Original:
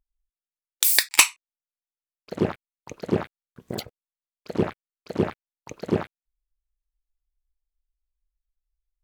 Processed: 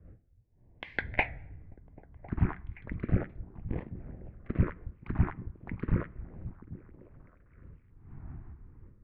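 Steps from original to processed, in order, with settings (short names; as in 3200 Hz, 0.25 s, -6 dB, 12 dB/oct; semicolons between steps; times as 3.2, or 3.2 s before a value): 3.65–4.58 switching dead time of 0.19 ms; wind noise 110 Hz -39 dBFS; 1.01–2.39 tilt -2.5 dB/oct; in parallel at +2.5 dB: compressor, threshold -37 dBFS, peak gain reduction 22.5 dB; on the sum: LFO notch sine 0.33 Hz 780–1600 Hz; on a send: delay with a stepping band-pass 0.263 s, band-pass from 180 Hz, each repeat 0.7 oct, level -9 dB; on the sum: plate-style reverb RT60 0.9 s, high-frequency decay 0.75×, DRR 19.5 dB; mistuned SSB -260 Hz 200–2400 Hz; record warp 78 rpm, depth 100 cents; gain -3 dB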